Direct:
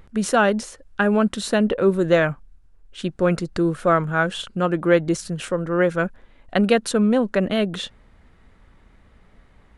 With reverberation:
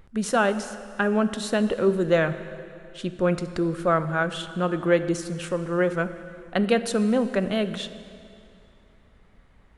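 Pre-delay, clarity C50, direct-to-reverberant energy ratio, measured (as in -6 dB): 4 ms, 12.0 dB, 11.0 dB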